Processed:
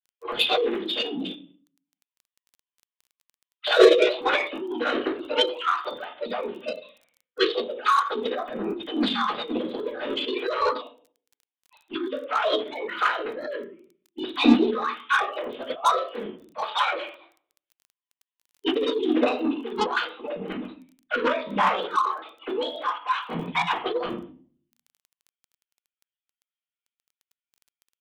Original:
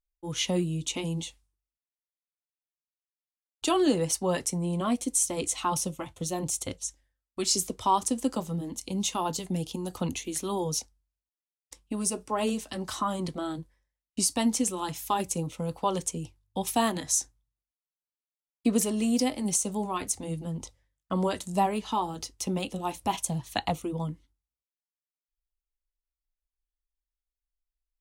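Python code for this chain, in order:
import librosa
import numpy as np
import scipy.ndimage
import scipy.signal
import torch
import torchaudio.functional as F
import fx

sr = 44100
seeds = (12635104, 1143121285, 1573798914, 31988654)

p1 = fx.sine_speech(x, sr)
p2 = fx.room_shoebox(p1, sr, seeds[0], volume_m3=39.0, walls='mixed', distance_m=2.0)
p3 = 10.0 ** (-18.0 / 20.0) * np.tanh(p2 / 10.0 ** (-18.0 / 20.0))
p4 = p2 + F.gain(torch.from_numpy(p3), -10.5).numpy()
p5 = fx.formant_shift(p4, sr, semitones=4)
p6 = fx.dmg_crackle(p5, sr, seeds[1], per_s=15.0, level_db=-40.0)
p7 = fx.high_shelf(p6, sr, hz=2500.0, db=10.5)
y = F.gain(torch.from_numpy(p7), -10.0).numpy()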